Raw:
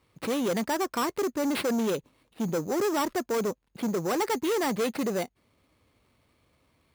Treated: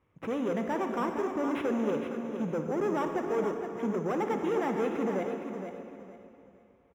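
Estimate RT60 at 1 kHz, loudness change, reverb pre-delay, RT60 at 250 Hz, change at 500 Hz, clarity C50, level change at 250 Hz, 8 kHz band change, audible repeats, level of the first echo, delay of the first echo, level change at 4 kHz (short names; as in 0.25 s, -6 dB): 2.8 s, -2.5 dB, 32 ms, 2.9 s, -1.5 dB, 3.0 dB, -2.0 dB, under -15 dB, 3, -8.0 dB, 0.464 s, -13.5 dB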